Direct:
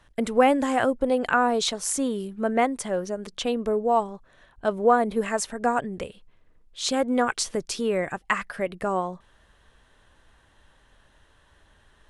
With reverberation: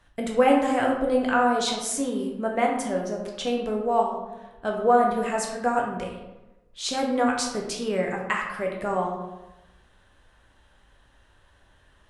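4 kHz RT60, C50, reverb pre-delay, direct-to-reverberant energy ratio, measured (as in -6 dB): 0.60 s, 3.5 dB, 9 ms, -0.5 dB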